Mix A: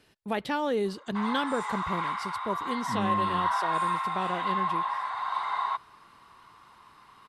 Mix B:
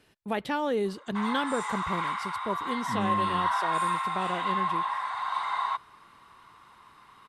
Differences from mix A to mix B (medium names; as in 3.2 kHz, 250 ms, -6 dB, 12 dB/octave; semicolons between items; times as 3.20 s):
background: add tilt EQ +2 dB/octave; master: add peaking EQ 4.7 kHz -3 dB 0.64 oct